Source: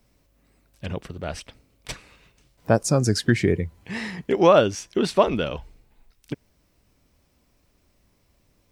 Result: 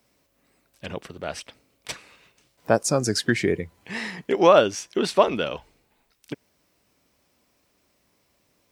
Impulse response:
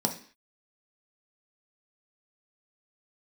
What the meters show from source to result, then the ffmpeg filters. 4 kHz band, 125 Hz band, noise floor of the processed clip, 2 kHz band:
+1.5 dB, -7.5 dB, -68 dBFS, +1.5 dB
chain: -af "highpass=f=330:p=1,volume=1.5dB"

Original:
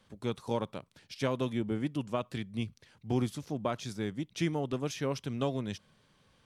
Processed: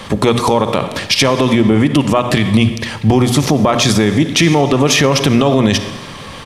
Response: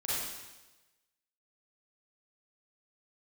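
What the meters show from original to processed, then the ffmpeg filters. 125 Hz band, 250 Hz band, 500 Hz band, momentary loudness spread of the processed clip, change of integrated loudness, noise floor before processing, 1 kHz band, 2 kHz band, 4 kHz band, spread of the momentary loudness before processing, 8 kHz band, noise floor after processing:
+21.5 dB, +22.0 dB, +20.5 dB, 6 LU, +22.0 dB, -68 dBFS, +23.0 dB, +25.5 dB, +27.5 dB, 8 LU, +28.0 dB, -31 dBFS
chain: -filter_complex "[0:a]acompressor=threshold=-37dB:ratio=10,bandreject=f=1.5k:w=7.6,aresample=32000,aresample=44100,equalizer=f=1.3k:w=0.56:g=5,bandreject=f=60:t=h:w=6,bandreject=f=120:t=h:w=6,bandreject=f=180:t=h:w=6,bandreject=f=240:t=h:w=6,asplit=2[a][b];[1:a]atrim=start_sample=2205[c];[b][c]afir=irnorm=-1:irlink=0,volume=-17dB[d];[a][d]amix=inputs=2:normalize=0,alimiter=level_in=34.5dB:limit=-1dB:release=50:level=0:latency=1,volume=-1dB"

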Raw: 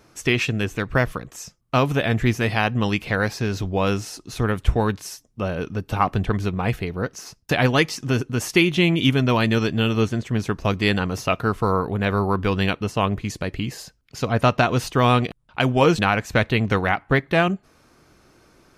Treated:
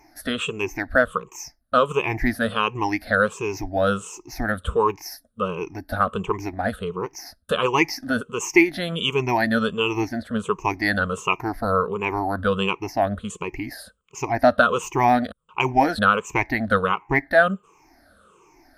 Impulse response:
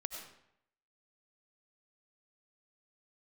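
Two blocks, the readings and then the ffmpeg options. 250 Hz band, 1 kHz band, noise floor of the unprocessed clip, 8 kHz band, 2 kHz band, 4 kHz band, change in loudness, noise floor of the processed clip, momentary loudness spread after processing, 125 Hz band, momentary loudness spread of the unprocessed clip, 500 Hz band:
-3.0 dB, +2.0 dB, -58 dBFS, -0.5 dB, +1.0 dB, -3.0 dB, -1.0 dB, -59 dBFS, 13 LU, -9.5 dB, 10 LU, +0.5 dB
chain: -af "afftfilt=real='re*pow(10,23/40*sin(2*PI*(0.73*log(max(b,1)*sr/1024/100)/log(2)-(-1.4)*(pts-256)/sr)))':imag='im*pow(10,23/40*sin(2*PI*(0.73*log(max(b,1)*sr/1024/100)/log(2)-(-1.4)*(pts-256)/sr)))':win_size=1024:overlap=0.75,equalizer=f=125:t=o:w=1:g=-11,equalizer=f=1k:t=o:w=1:g=5,equalizer=f=4k:t=o:w=1:g=-5,volume=-5.5dB"

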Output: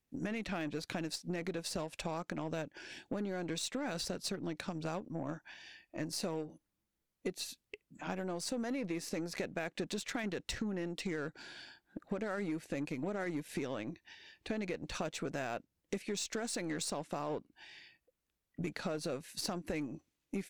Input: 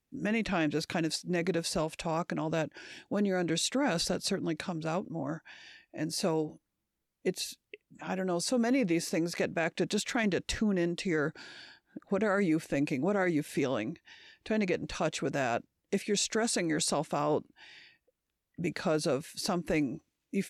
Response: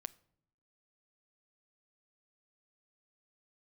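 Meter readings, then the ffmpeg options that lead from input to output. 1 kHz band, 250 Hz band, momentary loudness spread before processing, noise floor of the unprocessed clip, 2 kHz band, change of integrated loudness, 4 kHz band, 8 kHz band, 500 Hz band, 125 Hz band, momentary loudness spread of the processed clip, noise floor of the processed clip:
-8.0 dB, -8.0 dB, 10 LU, -84 dBFS, -8.0 dB, -8.0 dB, -6.5 dB, -7.0 dB, -8.5 dB, -7.5 dB, 11 LU, under -85 dBFS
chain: -af "aeval=exprs='0.106*(cos(1*acos(clip(val(0)/0.106,-1,1)))-cos(1*PI/2))+0.00422*(cos(7*acos(clip(val(0)/0.106,-1,1)))-cos(7*PI/2))+0.00266*(cos(8*acos(clip(val(0)/0.106,-1,1)))-cos(8*PI/2))':c=same,acompressor=threshold=-36dB:ratio=6,volume=1dB"

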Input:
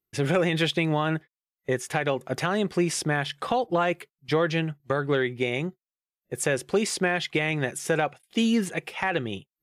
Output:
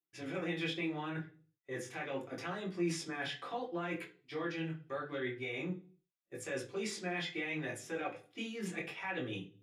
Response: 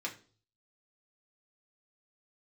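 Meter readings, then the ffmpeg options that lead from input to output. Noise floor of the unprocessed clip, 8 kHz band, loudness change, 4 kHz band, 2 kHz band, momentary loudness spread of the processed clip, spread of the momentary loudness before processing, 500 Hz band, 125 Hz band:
under -85 dBFS, -15.0 dB, -13.5 dB, -12.5 dB, -12.0 dB, 7 LU, 7 LU, -14.5 dB, -15.0 dB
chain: -filter_complex "[0:a]areverse,acompressor=threshold=-31dB:ratio=6,areverse,flanger=delay=16:depth=7.7:speed=0.76[a];[1:a]atrim=start_sample=2205,afade=t=out:st=0.44:d=0.01,atrim=end_sample=19845[b];[a][b]afir=irnorm=-1:irlink=0,volume=-3dB"

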